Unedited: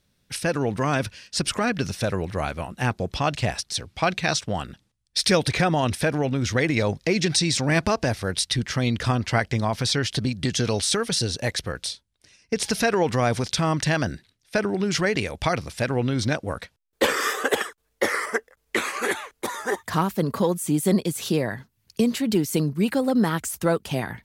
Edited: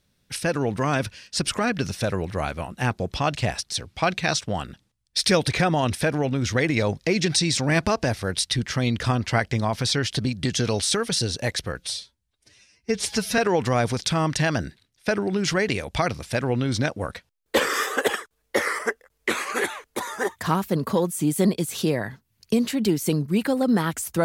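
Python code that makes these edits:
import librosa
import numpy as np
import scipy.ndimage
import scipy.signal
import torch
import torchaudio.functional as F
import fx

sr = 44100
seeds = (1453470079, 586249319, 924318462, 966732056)

y = fx.edit(x, sr, fx.stretch_span(start_s=11.79, length_s=1.06, factor=1.5), tone=tone)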